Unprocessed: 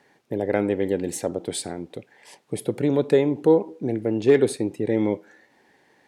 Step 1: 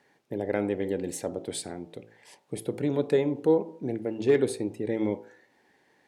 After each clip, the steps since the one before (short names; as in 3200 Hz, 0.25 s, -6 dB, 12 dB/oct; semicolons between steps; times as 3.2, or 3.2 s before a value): de-hum 55.41 Hz, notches 23; gain -5 dB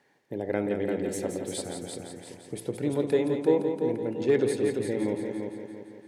multi-head echo 0.171 s, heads first and second, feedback 50%, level -7.5 dB; gain -1.5 dB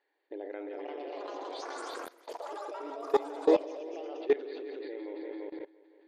brick-wall FIR band-pass 280–4800 Hz; echoes that change speed 0.504 s, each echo +6 st, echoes 3; level quantiser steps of 20 dB